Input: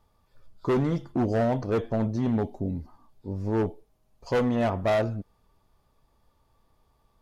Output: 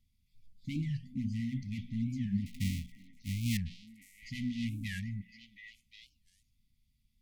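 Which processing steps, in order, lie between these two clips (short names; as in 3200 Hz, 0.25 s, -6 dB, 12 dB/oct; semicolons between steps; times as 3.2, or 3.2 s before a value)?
2.46–3.59 half-waves squared off; brick-wall FIR band-stop 270–1900 Hz; notches 60/120/180/240 Hz; delay with a stepping band-pass 0.353 s, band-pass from 540 Hz, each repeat 1.4 oct, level -1.5 dB; record warp 45 rpm, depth 250 cents; gain -6 dB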